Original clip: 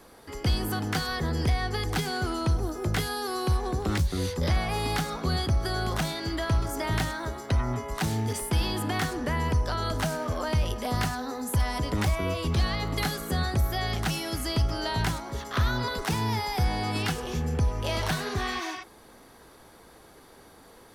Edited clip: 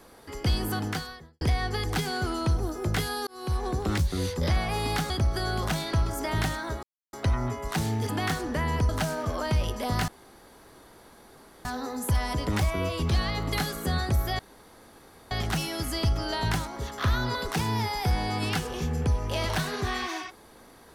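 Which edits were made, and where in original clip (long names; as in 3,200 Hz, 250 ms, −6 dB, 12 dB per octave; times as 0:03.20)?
0:00.86–0:01.41: fade out quadratic
0:03.27–0:03.64: fade in
0:05.10–0:05.39: remove
0:06.22–0:06.49: remove
0:07.39: splice in silence 0.30 s
0:08.35–0:08.81: remove
0:09.61–0:09.91: remove
0:11.10: splice in room tone 1.57 s
0:13.84: splice in room tone 0.92 s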